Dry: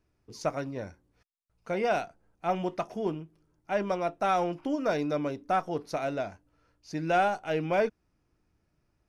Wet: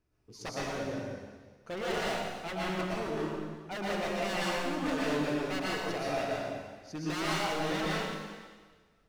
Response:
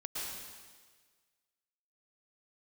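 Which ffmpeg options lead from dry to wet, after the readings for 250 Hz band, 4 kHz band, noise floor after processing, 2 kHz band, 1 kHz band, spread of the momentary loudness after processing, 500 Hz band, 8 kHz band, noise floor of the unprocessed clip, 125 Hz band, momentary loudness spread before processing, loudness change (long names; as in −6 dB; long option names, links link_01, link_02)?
−1.0 dB, +7.5 dB, −67 dBFS, +1.5 dB, −5.5 dB, 12 LU, −4.5 dB, +6.5 dB, −75 dBFS, −0.5 dB, 11 LU, −3.5 dB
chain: -filter_complex "[0:a]aeval=exprs='0.0422*(abs(mod(val(0)/0.0422+3,4)-2)-1)':channel_layout=same[link_01];[1:a]atrim=start_sample=2205[link_02];[link_01][link_02]afir=irnorm=-1:irlink=0"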